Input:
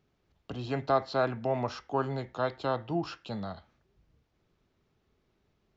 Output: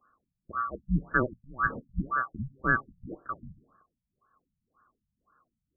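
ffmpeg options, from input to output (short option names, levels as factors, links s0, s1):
-af "afftfilt=real='real(if(lt(b,960),b+48*(1-2*mod(floor(b/48),2)),b),0)':imag='imag(if(lt(b,960),b+48*(1-2*mod(floor(b/48),2)),b),0)':win_size=2048:overlap=0.75,afftfilt=real='re*lt(b*sr/1024,200*pow(1800/200,0.5+0.5*sin(2*PI*1.9*pts/sr)))':imag='im*lt(b*sr/1024,200*pow(1800/200,0.5+0.5*sin(2*PI*1.9*pts/sr)))':win_size=1024:overlap=0.75,volume=2.24"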